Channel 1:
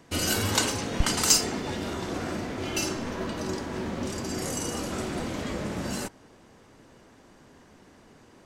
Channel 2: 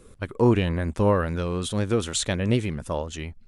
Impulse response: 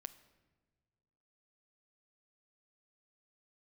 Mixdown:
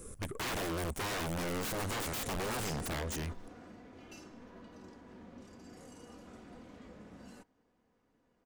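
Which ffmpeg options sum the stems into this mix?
-filter_complex "[0:a]aecho=1:1:4.1:0.35,adelay=1350,volume=-11.5dB[a];[1:a]aexciter=amount=6.9:drive=4.5:freq=5.6k,aeval=exprs='(mod(15*val(0)+1,2)-1)/15':c=same,volume=1dB,asplit=3[b][c][d];[c]volume=-23dB[e];[d]apad=whole_len=437025[f];[a][f]sidechaingate=range=-9dB:threshold=-35dB:ratio=16:detection=peak[g];[2:a]atrim=start_sample=2205[h];[e][h]afir=irnorm=-1:irlink=0[i];[g][b][i]amix=inputs=3:normalize=0,highshelf=f=3.2k:g=-9,asoftclip=type=tanh:threshold=-34dB"

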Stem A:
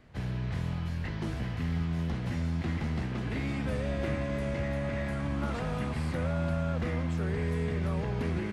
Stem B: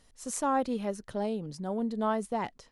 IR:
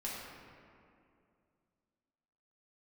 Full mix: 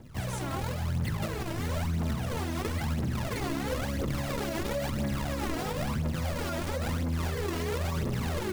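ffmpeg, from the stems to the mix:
-filter_complex "[0:a]highpass=78,bandreject=f=60:t=h:w=6,bandreject=f=120:t=h:w=6,bandreject=f=180:t=h:w=6,bandreject=f=240:t=h:w=6,acrusher=samples=33:mix=1:aa=0.000001:lfo=1:lforange=52.8:lforate=3.5,volume=1.5dB,asplit=2[a][b];[b]volume=-8dB[c];[1:a]volume=-11.5dB[d];[2:a]atrim=start_sample=2205[e];[c][e]afir=irnorm=-1:irlink=0[f];[a][d][f]amix=inputs=3:normalize=0,aphaser=in_gain=1:out_gain=1:delay=3.2:decay=0.66:speed=0.99:type=triangular,alimiter=limit=-23dB:level=0:latency=1:release=91"

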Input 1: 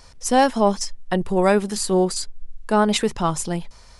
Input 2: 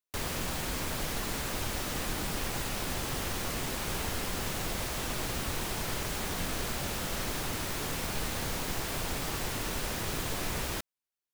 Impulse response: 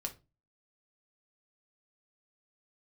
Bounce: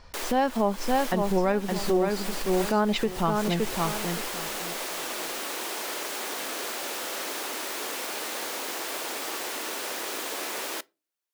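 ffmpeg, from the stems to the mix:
-filter_complex "[0:a]lowpass=3.5k,volume=-2dB,asplit=3[a][b][c];[b]volume=-5dB[d];[1:a]highpass=f=320:w=0.5412,highpass=f=320:w=1.3066,acontrast=57,volume=-4.5dB,asplit=2[e][f];[f]volume=-13.5dB[g];[c]apad=whole_len=499661[h];[e][h]sidechaincompress=threshold=-31dB:ratio=8:attack=5.5:release=130[i];[2:a]atrim=start_sample=2205[j];[g][j]afir=irnorm=-1:irlink=0[k];[d]aecho=0:1:567|1134|1701|2268:1|0.23|0.0529|0.0122[l];[a][i][k][l]amix=inputs=4:normalize=0,alimiter=limit=-14.5dB:level=0:latency=1:release=259"

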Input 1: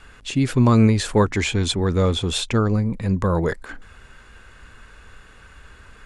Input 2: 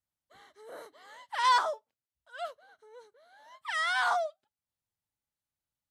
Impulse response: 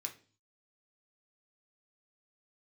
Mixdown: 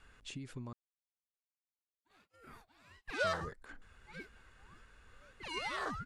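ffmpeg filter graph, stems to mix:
-filter_complex "[0:a]acompressor=threshold=-27dB:ratio=8,volume=-15.5dB,asplit=3[a][b][c];[a]atrim=end=0.73,asetpts=PTS-STARTPTS,afade=t=out:st=0.726:d=0.004:c=hsin[d];[b]atrim=start=0.73:end=3.24,asetpts=PTS-STARTPTS,volume=0[e];[c]atrim=start=3.24,asetpts=PTS-STARTPTS,afade=t=in:d=0.004:c=hsin[f];[d][e][f]concat=n=3:v=0:a=1[g];[1:a]agate=range=-9dB:threshold=-57dB:ratio=16:detection=peak,flanger=delay=2.1:depth=1.6:regen=54:speed=0.86:shape=sinusoidal,aeval=exprs='val(0)*sin(2*PI*640*n/s+640*0.5/1.6*sin(2*PI*1.6*n/s))':c=same,adelay=1750,volume=-3dB[h];[g][h]amix=inputs=2:normalize=0"

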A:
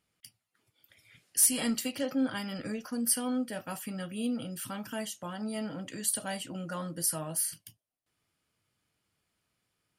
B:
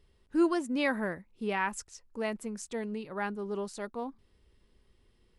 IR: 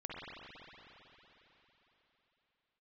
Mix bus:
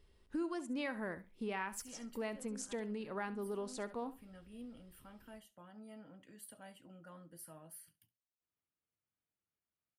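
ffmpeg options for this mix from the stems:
-filter_complex "[0:a]equalizer=f=6.1k:w=0.8:g=-13.5,adelay=350,volume=-17dB,asplit=2[a][b];[b]volume=-20dB[c];[1:a]acompressor=threshold=-36dB:ratio=4,volume=-1.5dB,asplit=3[d][e][f];[e]volume=-15dB[g];[f]apad=whole_len=455780[h];[a][h]sidechaincompress=threshold=-48dB:ratio=8:attack=24:release=258[i];[c][g]amix=inputs=2:normalize=0,aecho=0:1:68|136|204:1|0.17|0.0289[j];[i][d][j]amix=inputs=3:normalize=0,equalizer=f=130:t=o:w=0.73:g=-3.5"

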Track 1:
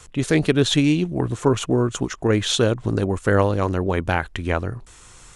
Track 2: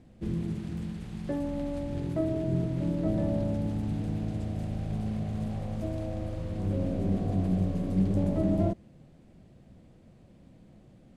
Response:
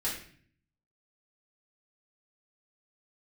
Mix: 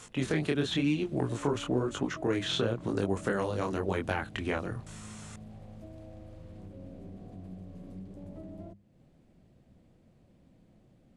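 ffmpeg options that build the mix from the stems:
-filter_complex "[0:a]acrossover=split=270|3500[a][b][c];[a]acompressor=threshold=-28dB:ratio=4[d];[b]acompressor=threshold=-28dB:ratio=4[e];[c]acompressor=threshold=-48dB:ratio=4[f];[d][e][f]amix=inputs=3:normalize=0,flanger=delay=20:depth=7.9:speed=0.98,highpass=f=180:p=1,volume=1.5dB[g];[1:a]acompressor=threshold=-41dB:ratio=2.5,bandreject=f=50:t=h:w=6,bandreject=f=100:t=h:w=6,bandreject=f=150:t=h:w=6,bandreject=f=200:t=h:w=6,volume=-6dB[h];[g][h]amix=inputs=2:normalize=0"

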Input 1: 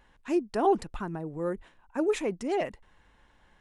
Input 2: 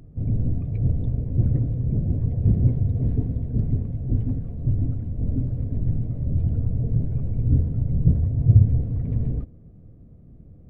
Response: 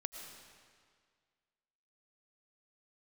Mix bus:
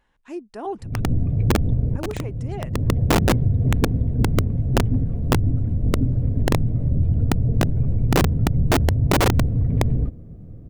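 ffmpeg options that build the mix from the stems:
-filter_complex "[0:a]volume=-6dB,asplit=3[a][b][c];[a]atrim=end=1,asetpts=PTS-STARTPTS,afade=t=out:st=0.996:d=0.004:c=hsin[d];[b]atrim=start=1:end=1.77,asetpts=PTS-STARTPTS,volume=0[e];[c]atrim=start=1.77,asetpts=PTS-STARTPTS,afade=t=in:d=0.004:c=hsin[f];[d][e][f]concat=n=3:v=0:a=1,asplit=2[g][h];[1:a]acontrast=26,aeval=exprs='(mod(2.66*val(0)+1,2)-1)/2.66':c=same,adelay=650,volume=2.5dB[i];[h]apad=whole_len=500418[j];[i][j]sidechaincompress=threshold=-45dB:ratio=12:attack=8.6:release=291[k];[g][k]amix=inputs=2:normalize=0,acompressor=threshold=-16dB:ratio=3"

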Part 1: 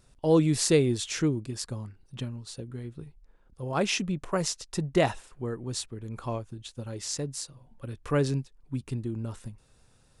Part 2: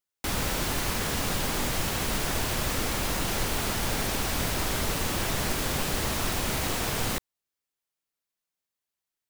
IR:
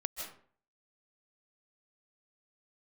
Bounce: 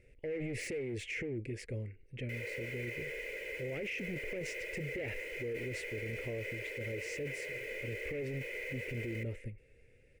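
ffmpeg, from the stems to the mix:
-filter_complex "[0:a]volume=26.5dB,asoftclip=hard,volume=-26.5dB,volume=-1.5dB[a];[1:a]highpass=420,aecho=1:1:2:0.69,adelay=2050,volume=-16dB,asplit=2[b][c];[c]volume=-12.5dB[d];[2:a]atrim=start_sample=2205[e];[d][e]afir=irnorm=-1:irlink=0[f];[a][b][f]amix=inputs=3:normalize=0,firequalizer=gain_entry='entry(100,0);entry(180,-7);entry(480,10);entry(720,-13);entry(1100,-24);entry(2100,14);entry(3600,-15)':delay=0.05:min_phase=1,alimiter=level_in=7.5dB:limit=-24dB:level=0:latency=1:release=10,volume=-7.5dB"

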